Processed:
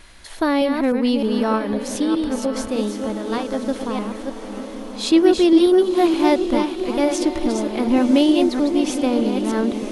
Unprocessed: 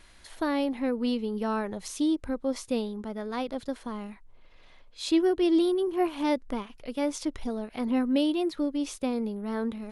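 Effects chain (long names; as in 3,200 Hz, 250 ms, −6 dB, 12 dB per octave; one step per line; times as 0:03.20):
delay that plays each chunk backwards 307 ms, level −5.5 dB
0:01.50–0:03.67: amplitude tremolo 4.4 Hz, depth 49%
feedback delay with all-pass diffusion 1,052 ms, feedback 64%, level −11 dB
level +9 dB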